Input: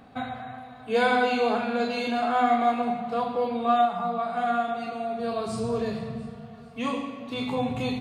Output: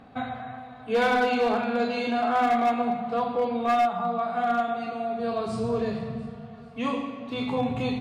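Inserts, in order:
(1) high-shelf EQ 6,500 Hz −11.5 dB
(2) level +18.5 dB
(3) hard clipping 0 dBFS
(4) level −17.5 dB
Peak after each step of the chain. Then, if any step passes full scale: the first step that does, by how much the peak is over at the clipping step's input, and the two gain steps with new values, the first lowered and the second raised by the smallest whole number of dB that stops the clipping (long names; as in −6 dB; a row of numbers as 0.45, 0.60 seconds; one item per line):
−11.5, +7.0, 0.0, −17.5 dBFS
step 2, 7.0 dB
step 2 +11.5 dB, step 4 −10.5 dB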